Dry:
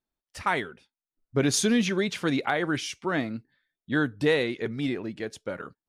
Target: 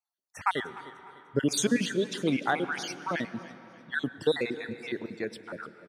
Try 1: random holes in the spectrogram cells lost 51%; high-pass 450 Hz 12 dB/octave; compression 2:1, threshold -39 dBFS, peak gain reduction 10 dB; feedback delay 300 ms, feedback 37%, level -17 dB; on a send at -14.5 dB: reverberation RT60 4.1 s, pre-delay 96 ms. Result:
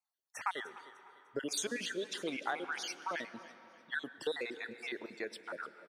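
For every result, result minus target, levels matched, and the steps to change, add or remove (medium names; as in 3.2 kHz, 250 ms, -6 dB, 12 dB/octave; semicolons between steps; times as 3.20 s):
125 Hz band -12.5 dB; compression: peak gain reduction +10 dB
change: high-pass 130 Hz 12 dB/octave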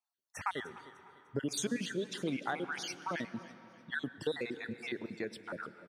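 compression: peak gain reduction +10.5 dB
remove: compression 2:1, threshold -39 dBFS, peak gain reduction 10.5 dB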